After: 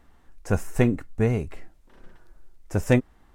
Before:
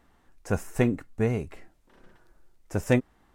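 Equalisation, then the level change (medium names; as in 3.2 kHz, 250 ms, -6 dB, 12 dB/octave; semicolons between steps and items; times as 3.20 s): bass shelf 68 Hz +9 dB; +2.0 dB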